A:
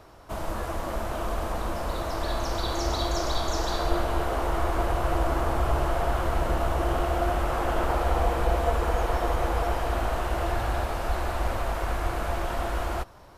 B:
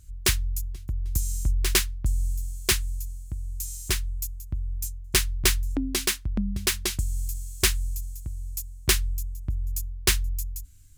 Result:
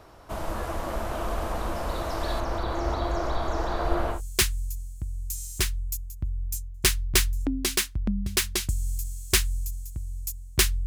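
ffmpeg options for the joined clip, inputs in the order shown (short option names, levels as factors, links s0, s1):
-filter_complex "[0:a]asettb=1/sr,asplit=3[s0][s1][s2];[s0]atrim=end=2.404[s3];[s1]atrim=start=2.4:end=4.21,asetpts=PTS-STARTPTS,afade=t=in:d=0.004:c=qsin,afade=t=out:st=1.806:d=0.004:c=qsin,acrossover=split=2500[s4][s5];[s5]acompressor=threshold=0.00355:ratio=4:attack=1:release=60[s6];[s4][s6]amix=inputs=2:normalize=0[s7];[s2]atrim=start=4.206[s8];[s3][s7]acrossfade=d=0.004:c1=hsin:c2=qsin[s9];[s9][s8]acrossfade=d=0.004:c1=qsin:c2=hsin,apad=whole_dur=10.86,atrim=end=10.86,atrim=end=4.21,asetpts=PTS-STARTPTS[s10];[1:a]atrim=start=2.39:end=9.16,asetpts=PTS-STARTPTS[s11];[s10][s11]acrossfade=d=0.12:c1=tri:c2=tri"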